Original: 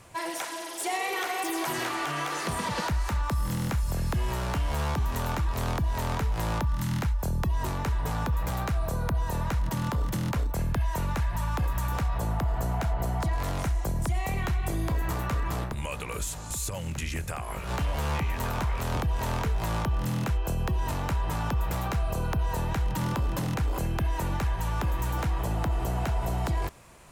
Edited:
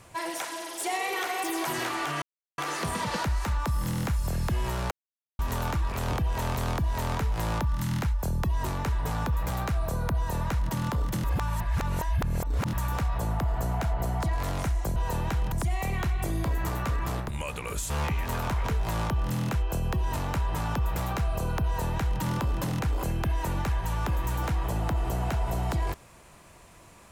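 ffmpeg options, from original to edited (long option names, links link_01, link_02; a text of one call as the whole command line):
ffmpeg -i in.wav -filter_complex "[0:a]asplit=12[link_01][link_02][link_03][link_04][link_05][link_06][link_07][link_08][link_09][link_10][link_11][link_12];[link_01]atrim=end=2.22,asetpts=PTS-STARTPTS,afade=type=out:start_time=2.216:duration=0.004:curve=hsin,apad=pad_dur=0.36[link_13];[link_02]atrim=start=2.22:end=4.55,asetpts=PTS-STARTPTS,afade=type=in:duration=0.004:curve=hsin,afade=type=out:start_time=2.326:duration=0.004:curve=hsin[link_14];[link_03]atrim=start=4.55:end=5.03,asetpts=PTS-STARTPTS,volume=0[link_15];[link_04]atrim=start=5.03:end=5.562,asetpts=PTS-STARTPTS,afade=type=in:duration=0.004:curve=hsin[link_16];[link_05]atrim=start=18.758:end=19.402[link_17];[link_06]atrim=start=5.558:end=10.242[link_18];[link_07]atrim=start=10.238:end=11.732,asetpts=PTS-STARTPTS,areverse[link_19];[link_08]atrim=start=11.728:end=13.962[link_20];[link_09]atrim=start=22.398:end=22.962[link_21];[link_10]atrim=start=13.958:end=16.342[link_22];[link_11]atrim=start=18.008:end=18.762[link_23];[link_12]atrim=start=19.398[link_24];[link_13][link_14][link_15][link_16]concat=n=4:v=0:a=1[link_25];[link_25][link_17]acrossfade=duration=0.004:curve1=hsin:curve2=hsin[link_26];[link_26][link_18]acrossfade=duration=0.004:curve1=hsin:curve2=hsin[link_27];[link_27][link_19]acrossfade=duration=0.004:curve1=hsin:curve2=hsin[link_28];[link_28][link_20]acrossfade=duration=0.004:curve1=hsin:curve2=hsin[link_29];[link_29][link_21]acrossfade=duration=0.004:curve1=hsin:curve2=hsin[link_30];[link_30][link_22]acrossfade=duration=0.004:curve1=hsin:curve2=hsin[link_31];[link_31][link_23]acrossfade=duration=0.004:curve1=hsin:curve2=hsin[link_32];[link_32][link_24]acrossfade=duration=0.004:curve1=hsin:curve2=hsin" out.wav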